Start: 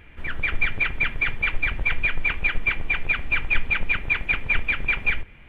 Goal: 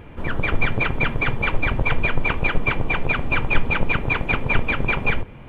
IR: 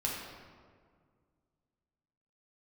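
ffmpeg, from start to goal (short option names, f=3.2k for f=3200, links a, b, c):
-af "equalizer=f=125:t=o:w=1:g=9,equalizer=f=250:t=o:w=1:g=6,equalizer=f=500:t=o:w=1:g=8,equalizer=f=1k:t=o:w=1:g=8,equalizer=f=2k:t=o:w=1:g=-7,volume=3.5dB"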